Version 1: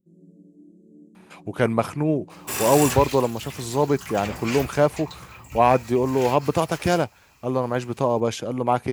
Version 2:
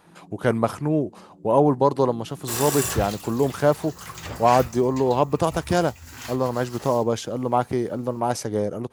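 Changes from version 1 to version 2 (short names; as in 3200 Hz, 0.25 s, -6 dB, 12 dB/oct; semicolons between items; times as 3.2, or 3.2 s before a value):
speech: entry -1.15 s; master: add bell 2400 Hz -8 dB 0.39 oct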